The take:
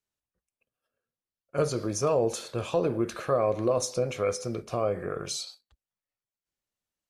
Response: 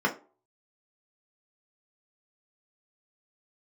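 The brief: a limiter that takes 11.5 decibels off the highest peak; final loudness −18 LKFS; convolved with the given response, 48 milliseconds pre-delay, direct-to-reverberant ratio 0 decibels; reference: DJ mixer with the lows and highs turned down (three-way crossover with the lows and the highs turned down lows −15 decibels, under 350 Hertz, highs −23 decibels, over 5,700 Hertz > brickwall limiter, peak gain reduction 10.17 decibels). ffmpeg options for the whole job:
-filter_complex "[0:a]alimiter=level_in=2dB:limit=-24dB:level=0:latency=1,volume=-2dB,asplit=2[link_01][link_02];[1:a]atrim=start_sample=2205,adelay=48[link_03];[link_02][link_03]afir=irnorm=-1:irlink=0,volume=-12.5dB[link_04];[link_01][link_04]amix=inputs=2:normalize=0,acrossover=split=350 5700:gain=0.178 1 0.0708[link_05][link_06][link_07];[link_05][link_06][link_07]amix=inputs=3:normalize=0,volume=22dB,alimiter=limit=-9.5dB:level=0:latency=1"

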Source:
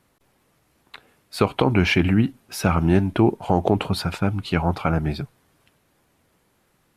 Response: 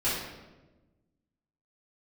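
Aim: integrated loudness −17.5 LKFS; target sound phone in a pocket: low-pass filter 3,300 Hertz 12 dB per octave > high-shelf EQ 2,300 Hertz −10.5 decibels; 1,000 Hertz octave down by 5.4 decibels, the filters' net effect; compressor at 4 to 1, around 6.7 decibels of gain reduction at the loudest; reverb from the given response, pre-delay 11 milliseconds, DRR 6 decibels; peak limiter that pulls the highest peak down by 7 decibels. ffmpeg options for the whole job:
-filter_complex "[0:a]equalizer=frequency=1000:width_type=o:gain=-5.5,acompressor=threshold=-21dB:ratio=4,alimiter=limit=-15.5dB:level=0:latency=1,asplit=2[link_01][link_02];[1:a]atrim=start_sample=2205,adelay=11[link_03];[link_02][link_03]afir=irnorm=-1:irlink=0,volume=-16.5dB[link_04];[link_01][link_04]amix=inputs=2:normalize=0,lowpass=3300,highshelf=frequency=2300:gain=-10.5,volume=10.5dB"

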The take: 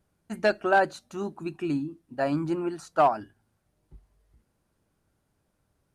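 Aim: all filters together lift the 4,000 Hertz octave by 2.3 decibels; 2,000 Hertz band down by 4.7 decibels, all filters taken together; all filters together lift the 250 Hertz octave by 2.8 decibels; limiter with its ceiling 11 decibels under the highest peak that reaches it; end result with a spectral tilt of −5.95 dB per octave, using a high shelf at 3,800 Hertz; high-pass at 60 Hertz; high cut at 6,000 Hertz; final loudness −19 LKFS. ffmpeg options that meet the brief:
ffmpeg -i in.wav -af "highpass=60,lowpass=6000,equalizer=frequency=250:width_type=o:gain=4,equalizer=frequency=2000:width_type=o:gain=-7.5,highshelf=frequency=3800:gain=-3.5,equalizer=frequency=4000:width_type=o:gain=7.5,volume=13.5dB,alimiter=limit=-8.5dB:level=0:latency=1" out.wav

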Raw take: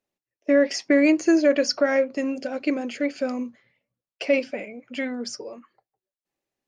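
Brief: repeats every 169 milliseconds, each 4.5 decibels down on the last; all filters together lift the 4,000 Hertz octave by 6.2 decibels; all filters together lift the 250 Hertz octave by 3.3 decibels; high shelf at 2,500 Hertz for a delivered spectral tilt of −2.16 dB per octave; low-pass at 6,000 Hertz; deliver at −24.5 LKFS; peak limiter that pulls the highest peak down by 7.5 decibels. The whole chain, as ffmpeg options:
ffmpeg -i in.wav -af "lowpass=6000,equalizer=frequency=250:width_type=o:gain=4,highshelf=frequency=2500:gain=6,equalizer=frequency=4000:width_type=o:gain=4.5,alimiter=limit=-13dB:level=0:latency=1,aecho=1:1:169|338|507|676|845|1014|1183|1352|1521:0.596|0.357|0.214|0.129|0.0772|0.0463|0.0278|0.0167|0.01,volume=-2dB" out.wav

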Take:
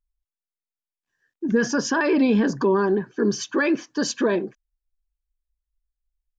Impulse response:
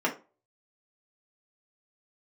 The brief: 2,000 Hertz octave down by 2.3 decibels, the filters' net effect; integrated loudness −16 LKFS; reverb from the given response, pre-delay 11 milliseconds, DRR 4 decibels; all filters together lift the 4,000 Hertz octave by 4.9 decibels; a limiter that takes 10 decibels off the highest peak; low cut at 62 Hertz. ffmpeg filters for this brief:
-filter_complex "[0:a]highpass=62,equalizer=frequency=2000:width_type=o:gain=-4.5,equalizer=frequency=4000:width_type=o:gain=7.5,alimiter=limit=-20dB:level=0:latency=1,asplit=2[link_01][link_02];[1:a]atrim=start_sample=2205,adelay=11[link_03];[link_02][link_03]afir=irnorm=-1:irlink=0,volume=-15dB[link_04];[link_01][link_04]amix=inputs=2:normalize=0,volume=10.5dB"

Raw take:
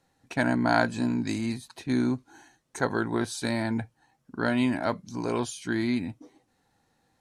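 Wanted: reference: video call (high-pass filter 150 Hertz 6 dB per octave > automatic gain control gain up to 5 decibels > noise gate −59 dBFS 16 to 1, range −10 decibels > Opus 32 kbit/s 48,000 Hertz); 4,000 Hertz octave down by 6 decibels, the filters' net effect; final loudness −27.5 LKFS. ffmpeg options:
ffmpeg -i in.wav -af "highpass=frequency=150:poles=1,equalizer=frequency=4000:width_type=o:gain=-7,dynaudnorm=maxgain=5dB,agate=range=-10dB:threshold=-59dB:ratio=16,volume=2.5dB" -ar 48000 -c:a libopus -b:a 32k out.opus

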